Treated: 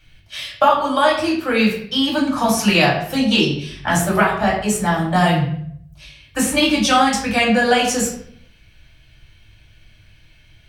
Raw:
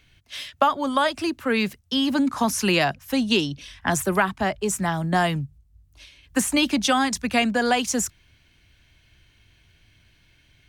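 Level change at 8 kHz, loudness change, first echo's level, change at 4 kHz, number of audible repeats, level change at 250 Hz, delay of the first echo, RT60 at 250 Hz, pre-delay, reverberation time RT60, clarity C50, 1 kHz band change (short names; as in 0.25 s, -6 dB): +3.5 dB, +5.5 dB, none, +6.0 dB, none, +5.0 dB, none, 0.85 s, 3 ms, 0.60 s, 5.0 dB, +6.5 dB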